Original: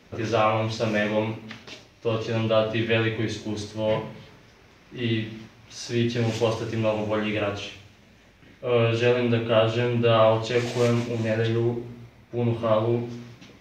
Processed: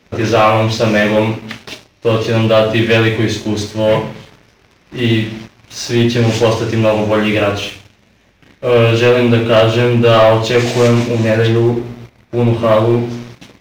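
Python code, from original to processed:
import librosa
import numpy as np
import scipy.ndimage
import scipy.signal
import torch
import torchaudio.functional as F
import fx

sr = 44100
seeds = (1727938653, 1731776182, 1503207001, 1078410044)

y = fx.leveller(x, sr, passes=2)
y = F.gain(torch.from_numpy(y), 5.5).numpy()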